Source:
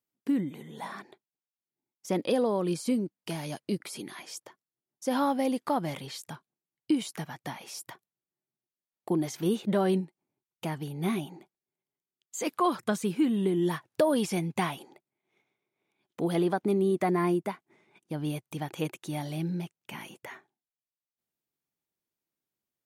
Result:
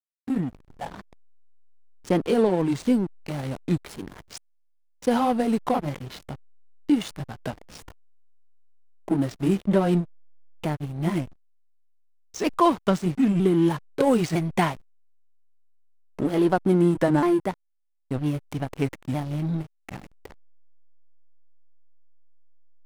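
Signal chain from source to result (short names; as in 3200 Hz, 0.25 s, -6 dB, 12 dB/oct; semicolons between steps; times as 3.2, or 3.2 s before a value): repeated pitch sweeps -3 st, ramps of 0.957 s; backlash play -33.5 dBFS; gain +7.5 dB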